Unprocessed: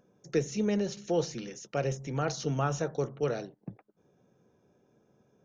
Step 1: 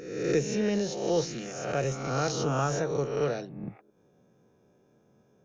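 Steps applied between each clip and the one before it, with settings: spectral swells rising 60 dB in 0.99 s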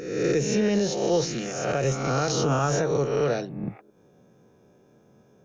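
limiter -21 dBFS, peak gain reduction 6.5 dB; gain +6.5 dB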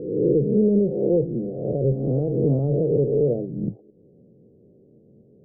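steep low-pass 520 Hz 36 dB/oct; gain +5 dB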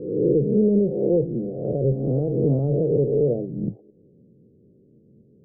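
low-pass opened by the level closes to 340 Hz, open at -19.5 dBFS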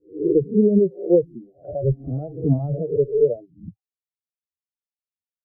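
per-bin expansion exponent 3; bell 160 Hz -3.5 dB 1.3 oct; mismatched tape noise reduction decoder only; gain +8.5 dB

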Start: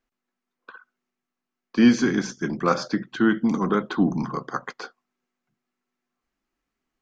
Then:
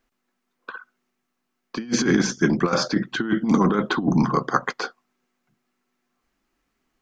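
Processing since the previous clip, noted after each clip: negative-ratio compressor -23 dBFS, ratio -0.5; gain +4.5 dB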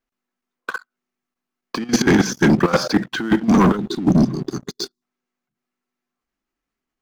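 spectral gain 3.77–5.02, 410–3400 Hz -24 dB; sample leveller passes 3; level quantiser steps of 12 dB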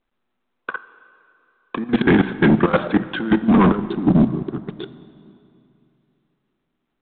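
Wiener smoothing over 15 samples; plate-style reverb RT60 2.7 s, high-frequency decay 0.8×, DRR 14 dB; µ-law 64 kbps 8000 Hz

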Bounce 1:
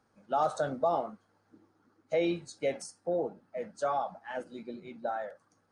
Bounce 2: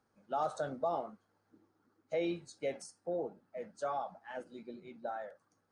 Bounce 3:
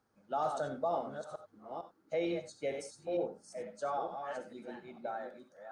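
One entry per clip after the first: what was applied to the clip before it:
bell 390 Hz +2 dB 0.29 oct; gain -6 dB
reverse delay 0.453 s, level -6 dB; non-linear reverb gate 0.11 s rising, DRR 10 dB

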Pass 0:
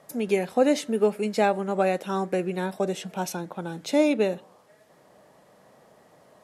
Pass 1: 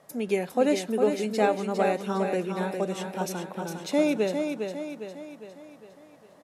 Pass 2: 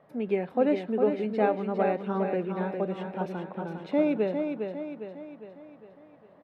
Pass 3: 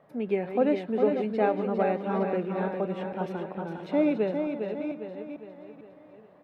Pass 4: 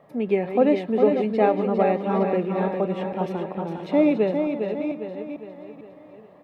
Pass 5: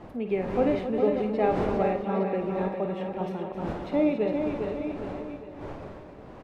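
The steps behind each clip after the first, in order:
feedback echo 0.406 s, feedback 49%, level -6 dB; gain -2.5 dB
air absorption 470 m
reverse delay 0.447 s, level -9 dB
notch 1500 Hz, Q 6.7; gain +5.5 dB
wind noise 560 Hz -34 dBFS; loudspeakers at several distances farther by 18 m -9 dB, 91 m -10 dB; gain -6 dB

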